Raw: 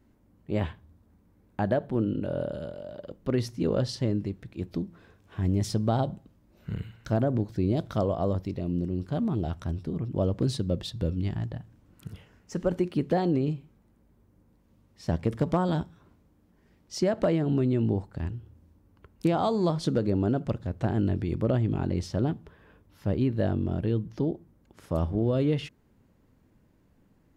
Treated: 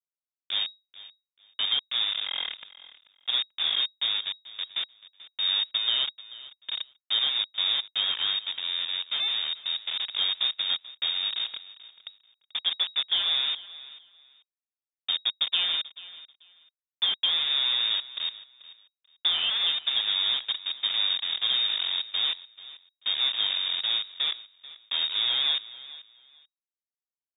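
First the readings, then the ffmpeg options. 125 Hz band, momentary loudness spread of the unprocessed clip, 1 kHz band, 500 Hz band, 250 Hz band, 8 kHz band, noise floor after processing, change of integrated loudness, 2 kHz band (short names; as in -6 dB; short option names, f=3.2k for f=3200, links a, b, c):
under -35 dB, 12 LU, -7.5 dB, -24.0 dB, under -30 dB, under -30 dB, under -85 dBFS, +3.0 dB, +9.0 dB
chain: -filter_complex "[0:a]afftfilt=real='re*gte(hypot(re,im),0.0708)':imag='im*gte(hypot(re,im),0.0708)':win_size=1024:overlap=0.75,acrusher=bits=4:mix=0:aa=0.000001,asplit=2[a][b];[b]aecho=0:1:437|874:0.126|0.0264[c];[a][c]amix=inputs=2:normalize=0,lowpass=f=3.2k:t=q:w=0.5098,lowpass=f=3.2k:t=q:w=0.6013,lowpass=f=3.2k:t=q:w=0.9,lowpass=f=3.2k:t=q:w=2.563,afreqshift=-3800,volume=-1.5dB"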